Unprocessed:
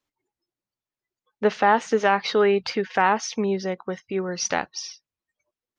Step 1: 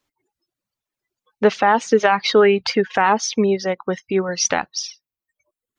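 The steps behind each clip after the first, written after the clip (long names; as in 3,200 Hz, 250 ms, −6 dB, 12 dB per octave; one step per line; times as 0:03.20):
reverb reduction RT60 0.86 s
brickwall limiter −11.5 dBFS, peak gain reduction 5 dB
level +7.5 dB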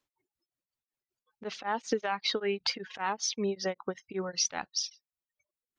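dynamic equaliser 4,300 Hz, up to +5 dB, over −38 dBFS, Q 1.2
downward compressor, threshold −18 dBFS, peak gain reduction 9 dB
tremolo along a rectified sine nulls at 5.2 Hz
level −7 dB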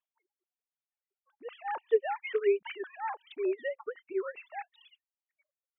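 three sine waves on the formant tracks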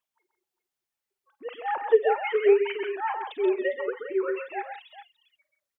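multi-tap delay 40/50/131/170/405 ms −18/−14.5/−7/−11/−13.5 dB
level +6 dB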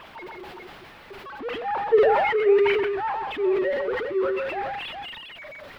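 converter with a step at zero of −29.5 dBFS
high-frequency loss of the air 400 metres
level that may fall only so fast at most 27 dB per second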